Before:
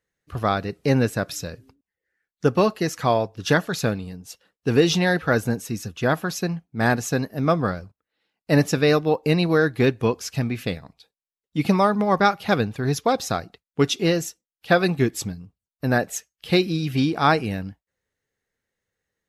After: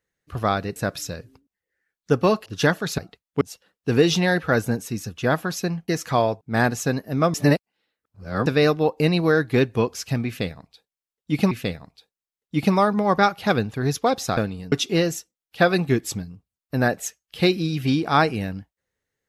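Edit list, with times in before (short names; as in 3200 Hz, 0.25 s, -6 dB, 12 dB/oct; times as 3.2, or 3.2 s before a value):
0.76–1.1 cut
2.8–3.33 move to 6.67
3.85–4.2 swap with 13.39–13.82
7.6–8.72 reverse
10.53–11.77 loop, 2 plays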